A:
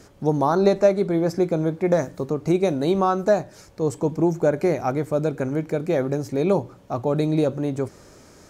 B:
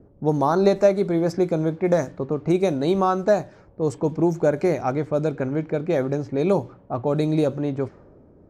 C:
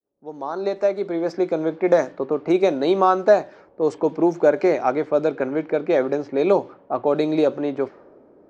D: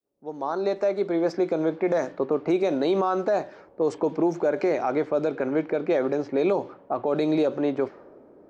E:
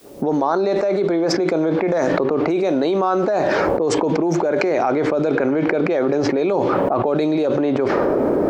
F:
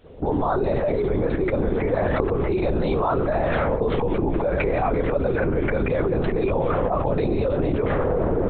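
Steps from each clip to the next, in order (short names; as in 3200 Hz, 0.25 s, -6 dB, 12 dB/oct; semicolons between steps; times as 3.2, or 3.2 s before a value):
low-pass opened by the level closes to 440 Hz, open at -16.5 dBFS
opening faded in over 1.95 s; three-band isolator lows -22 dB, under 260 Hz, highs -21 dB, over 5600 Hz; gain +4.5 dB
limiter -14.5 dBFS, peak gain reduction 11.5 dB
fast leveller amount 100%; gain +1 dB
LPC vocoder at 8 kHz whisper; gain -3.5 dB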